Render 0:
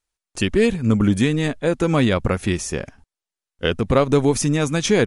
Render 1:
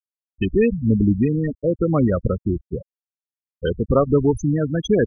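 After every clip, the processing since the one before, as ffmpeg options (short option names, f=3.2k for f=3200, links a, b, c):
-af "aeval=exprs='val(0)+0.0251*(sin(2*PI*60*n/s)+sin(2*PI*2*60*n/s)/2+sin(2*PI*3*60*n/s)/3+sin(2*PI*4*60*n/s)/4+sin(2*PI*5*60*n/s)/5)':c=same,afftfilt=real='re*gte(hypot(re,im),0.282)':imag='im*gte(hypot(re,im),0.282)':win_size=1024:overlap=0.75"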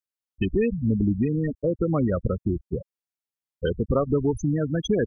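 -af "acompressor=threshold=-23dB:ratio=2"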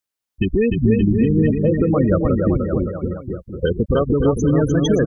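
-filter_complex "[0:a]alimiter=limit=-17dB:level=0:latency=1:release=172,asplit=2[a][b];[b]aecho=0:1:300|570|813|1032|1229:0.631|0.398|0.251|0.158|0.1[c];[a][c]amix=inputs=2:normalize=0,volume=8dB"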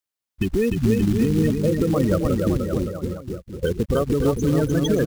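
-af "acrusher=bits=5:mode=log:mix=0:aa=0.000001,volume=-3.5dB"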